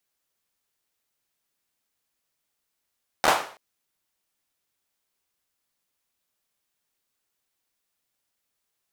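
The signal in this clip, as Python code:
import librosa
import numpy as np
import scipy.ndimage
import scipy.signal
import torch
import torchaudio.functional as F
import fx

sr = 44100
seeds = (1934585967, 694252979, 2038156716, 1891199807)

y = fx.drum_clap(sr, seeds[0], length_s=0.33, bursts=4, spacing_ms=13, hz=850.0, decay_s=0.44)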